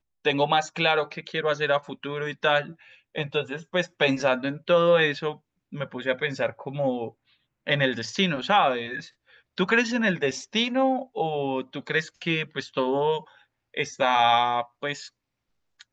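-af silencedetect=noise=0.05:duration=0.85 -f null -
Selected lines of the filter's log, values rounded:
silence_start: 14.93
silence_end: 15.92 | silence_duration: 0.99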